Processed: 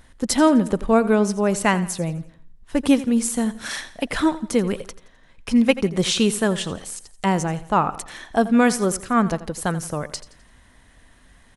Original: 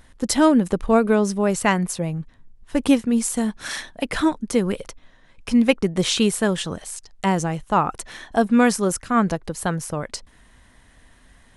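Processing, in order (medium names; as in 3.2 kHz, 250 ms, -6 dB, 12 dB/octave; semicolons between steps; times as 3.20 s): feedback delay 85 ms, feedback 41%, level -16 dB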